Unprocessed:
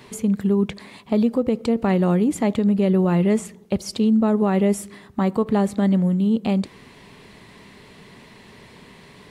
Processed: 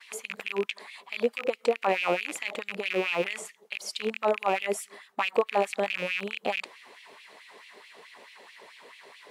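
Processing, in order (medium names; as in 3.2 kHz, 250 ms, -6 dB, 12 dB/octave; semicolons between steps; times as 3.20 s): rattle on loud lows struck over -33 dBFS, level -19 dBFS; LFO high-pass sine 4.6 Hz 470–2700 Hz; expander -50 dBFS; trim -4.5 dB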